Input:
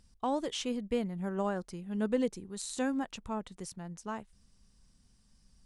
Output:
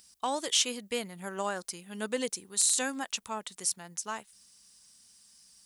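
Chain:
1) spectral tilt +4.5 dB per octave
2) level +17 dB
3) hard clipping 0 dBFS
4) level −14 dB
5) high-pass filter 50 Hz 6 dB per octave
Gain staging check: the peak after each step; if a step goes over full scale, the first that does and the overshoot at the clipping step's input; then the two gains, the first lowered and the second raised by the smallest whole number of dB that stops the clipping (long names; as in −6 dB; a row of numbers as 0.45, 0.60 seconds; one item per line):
−8.5, +8.5, 0.0, −14.0, −14.0 dBFS
step 2, 8.5 dB
step 2 +8 dB, step 4 −5 dB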